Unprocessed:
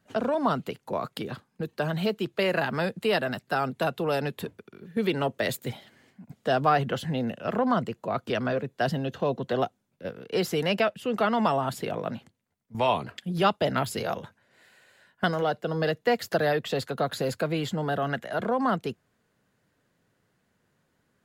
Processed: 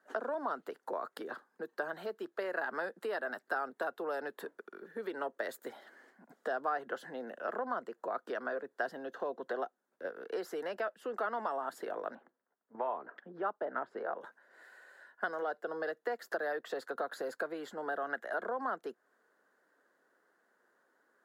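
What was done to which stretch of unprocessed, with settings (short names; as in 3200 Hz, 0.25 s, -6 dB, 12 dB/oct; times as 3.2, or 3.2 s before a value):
12.15–14.21 LPF 1600 Hz
whole clip: compressor 3:1, threshold -37 dBFS; HPF 320 Hz 24 dB/oct; resonant high shelf 2000 Hz -6.5 dB, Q 3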